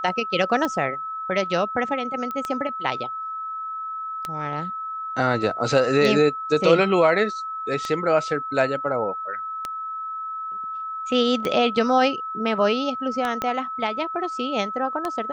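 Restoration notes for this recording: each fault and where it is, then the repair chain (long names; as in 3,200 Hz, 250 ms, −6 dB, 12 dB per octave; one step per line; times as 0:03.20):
scratch tick 33 1/3 rpm −12 dBFS
whistle 1,300 Hz −28 dBFS
0:02.31: click −18 dBFS
0:13.42: click −11 dBFS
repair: click removal
notch filter 1,300 Hz, Q 30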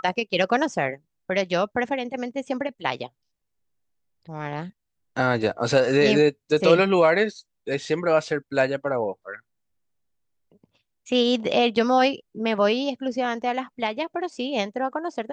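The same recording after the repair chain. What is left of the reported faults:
0:13.42: click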